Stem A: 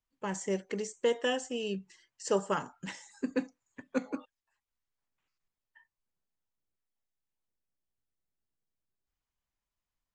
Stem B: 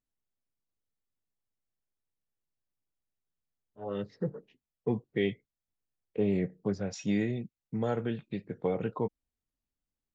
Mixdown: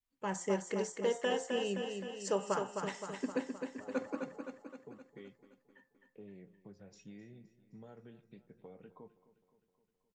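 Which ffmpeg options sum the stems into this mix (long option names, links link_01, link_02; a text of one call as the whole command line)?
ffmpeg -i stem1.wav -i stem2.wav -filter_complex "[0:a]alimiter=limit=-22dB:level=0:latency=1:release=251,volume=-3.5dB,asplit=2[link_01][link_02];[link_02]volume=-5.5dB[link_03];[1:a]acompressor=threshold=-33dB:ratio=3,flanger=delay=4:depth=2:regen=-69:speed=0.22:shape=triangular,volume=-13.5dB,asplit=2[link_04][link_05];[link_05]volume=-17dB[link_06];[link_03][link_06]amix=inputs=2:normalize=0,aecho=0:1:260|520|780|1040|1300|1560|1820|2080|2340:1|0.59|0.348|0.205|0.121|0.0715|0.0422|0.0249|0.0147[link_07];[link_01][link_04][link_07]amix=inputs=3:normalize=0,bandreject=frequency=175.5:width_type=h:width=4,bandreject=frequency=351:width_type=h:width=4,bandreject=frequency=526.5:width_type=h:width=4,bandreject=frequency=702:width_type=h:width=4,bandreject=frequency=877.5:width_type=h:width=4,bandreject=frequency=1053:width_type=h:width=4,bandreject=frequency=1228.5:width_type=h:width=4,bandreject=frequency=1404:width_type=h:width=4,bandreject=frequency=1579.5:width_type=h:width=4,bandreject=frequency=1755:width_type=h:width=4,adynamicequalizer=threshold=0.00398:dfrequency=780:dqfactor=0.75:tfrequency=780:tqfactor=0.75:attack=5:release=100:ratio=0.375:range=2.5:mode=boostabove:tftype=bell" out.wav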